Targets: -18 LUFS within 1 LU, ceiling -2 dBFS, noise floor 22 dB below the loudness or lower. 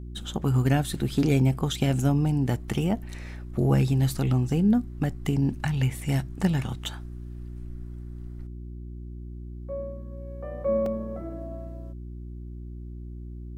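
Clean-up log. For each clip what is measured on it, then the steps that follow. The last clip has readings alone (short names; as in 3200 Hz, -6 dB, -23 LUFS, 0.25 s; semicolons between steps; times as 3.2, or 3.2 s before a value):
dropouts 1; longest dropout 2.8 ms; hum 60 Hz; harmonics up to 360 Hz; hum level -36 dBFS; loudness -26.5 LUFS; peak -10.5 dBFS; loudness target -18.0 LUFS
-> interpolate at 10.86, 2.8 ms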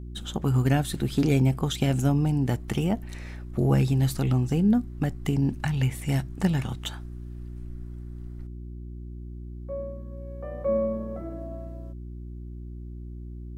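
dropouts 0; hum 60 Hz; harmonics up to 360 Hz; hum level -36 dBFS
-> de-hum 60 Hz, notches 6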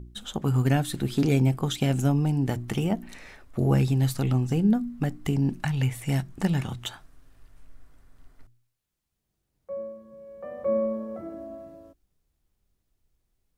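hum none; loudness -26.5 LUFS; peak -11.0 dBFS; loudness target -18.0 LUFS
-> gain +8.5 dB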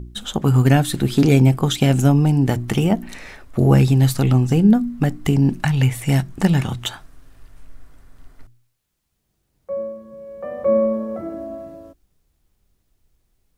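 loudness -18.0 LUFS; peak -2.5 dBFS; noise floor -71 dBFS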